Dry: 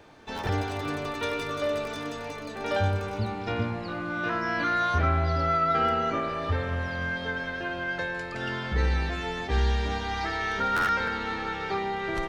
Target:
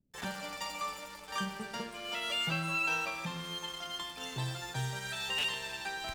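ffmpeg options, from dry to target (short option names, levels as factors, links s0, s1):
-filter_complex "[0:a]lowshelf=f=230:g=-6,acrossover=split=120[s0][s1];[s1]aeval=exprs='sgn(val(0))*max(abs(val(0))-0.0075,0)':c=same[s2];[s0][s2]amix=inputs=2:normalize=0,asetrate=88200,aresample=44100,volume=0.501"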